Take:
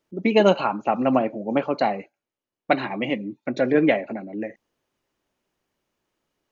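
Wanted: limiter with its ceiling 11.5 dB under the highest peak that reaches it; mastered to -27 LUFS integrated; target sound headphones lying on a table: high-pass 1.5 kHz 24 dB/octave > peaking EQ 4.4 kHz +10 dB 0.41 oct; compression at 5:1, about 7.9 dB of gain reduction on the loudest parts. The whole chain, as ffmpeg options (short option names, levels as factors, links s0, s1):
-af "acompressor=threshold=0.0891:ratio=5,alimiter=limit=0.0794:level=0:latency=1,highpass=f=1500:w=0.5412,highpass=f=1500:w=1.3066,equalizer=f=4400:t=o:w=0.41:g=10,volume=5.31"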